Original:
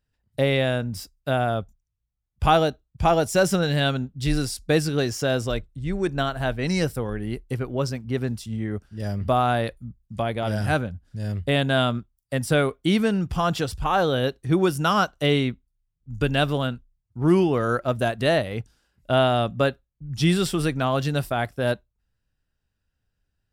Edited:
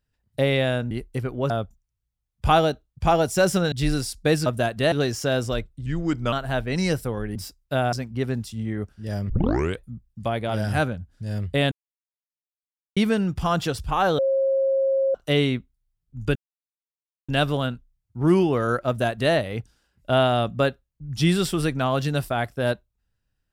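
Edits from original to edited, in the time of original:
0:00.91–0:01.48: swap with 0:07.27–0:07.86
0:03.70–0:04.16: remove
0:05.84–0:06.24: play speed 86%
0:09.23: tape start 0.51 s
0:11.65–0:12.90: silence
0:14.12–0:15.08: beep over 539 Hz −18 dBFS
0:16.29: splice in silence 0.93 s
0:17.88–0:18.34: duplicate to 0:04.90

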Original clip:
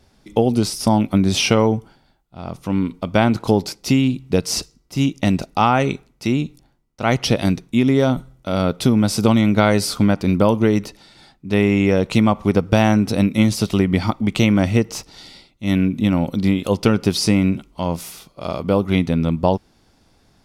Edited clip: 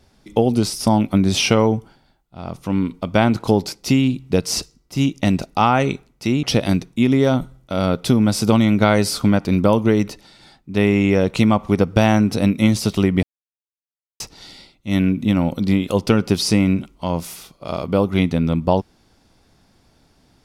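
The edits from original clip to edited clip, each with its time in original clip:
0:06.43–0:07.19: remove
0:13.99–0:14.96: silence

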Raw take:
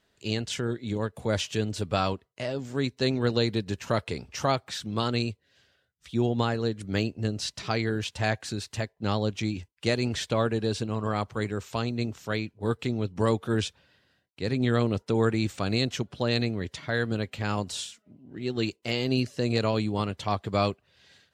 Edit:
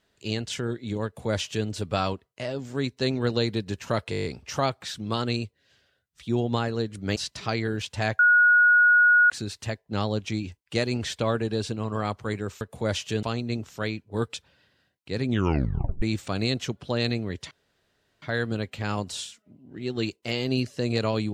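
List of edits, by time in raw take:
0:01.05–0:01.67: duplicate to 0:11.72
0:04.11: stutter 0.02 s, 8 plays
0:07.02–0:07.38: remove
0:08.41: insert tone 1,450 Hz −14 dBFS 1.11 s
0:12.83–0:13.65: remove
0:14.59: tape stop 0.74 s
0:16.82: splice in room tone 0.71 s

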